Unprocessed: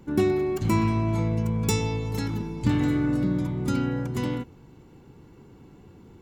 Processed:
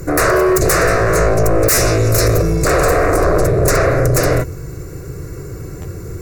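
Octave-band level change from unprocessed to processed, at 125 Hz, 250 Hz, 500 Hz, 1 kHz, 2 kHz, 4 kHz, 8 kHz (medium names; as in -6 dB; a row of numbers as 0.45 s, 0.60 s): +9.5 dB, +4.5 dB, +16.5 dB, +16.0 dB, +19.5 dB, +14.0 dB, +20.0 dB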